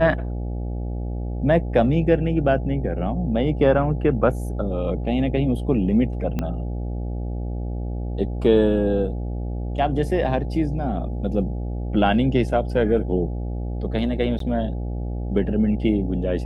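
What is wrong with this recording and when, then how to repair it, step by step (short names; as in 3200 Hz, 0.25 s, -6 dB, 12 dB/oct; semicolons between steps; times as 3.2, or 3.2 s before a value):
buzz 60 Hz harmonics 14 -27 dBFS
6.39 pop -13 dBFS
14.39–14.4 gap 13 ms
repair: de-click; de-hum 60 Hz, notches 14; interpolate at 14.39, 13 ms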